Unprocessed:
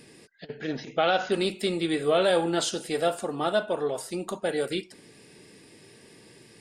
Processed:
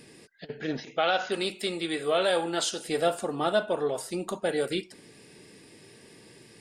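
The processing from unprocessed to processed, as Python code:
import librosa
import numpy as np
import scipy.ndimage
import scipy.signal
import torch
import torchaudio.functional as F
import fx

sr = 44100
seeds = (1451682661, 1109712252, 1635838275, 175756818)

y = fx.low_shelf(x, sr, hz=380.0, db=-9.0, at=(0.8, 2.86))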